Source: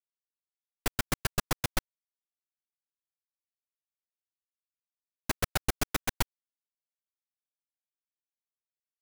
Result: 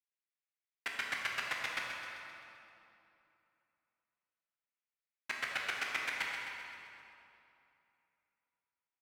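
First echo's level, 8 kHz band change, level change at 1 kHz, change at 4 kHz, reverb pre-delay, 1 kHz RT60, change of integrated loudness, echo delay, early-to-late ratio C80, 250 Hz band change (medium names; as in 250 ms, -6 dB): -9.5 dB, -13.0 dB, -5.0 dB, -3.5 dB, 10 ms, 2.8 s, -4.5 dB, 130 ms, 0.0 dB, -19.0 dB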